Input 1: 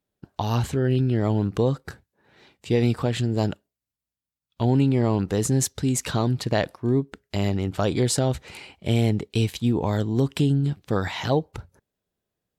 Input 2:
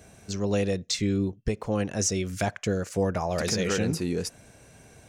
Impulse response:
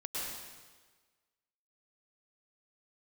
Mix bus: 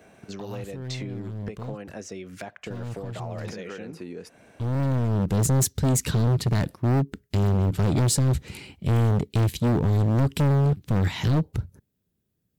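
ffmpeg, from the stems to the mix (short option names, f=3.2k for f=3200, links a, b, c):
-filter_complex "[0:a]highpass=f=120:p=1,asubboost=boost=7:cutoff=250,asoftclip=type=hard:threshold=-17dB,volume=-1.5dB[a];[1:a]acrossover=split=180 3300:gain=0.224 1 0.158[b][c][d];[b][c][d]amix=inputs=3:normalize=0,acompressor=threshold=-35dB:ratio=16,asoftclip=type=hard:threshold=-27.5dB,volume=2dB,asplit=2[e][f];[f]apad=whole_len=555058[g];[a][g]sidechaincompress=threshold=-52dB:ratio=3:attack=23:release=661[h];[h][e]amix=inputs=2:normalize=0,highshelf=f=11k:g=10.5"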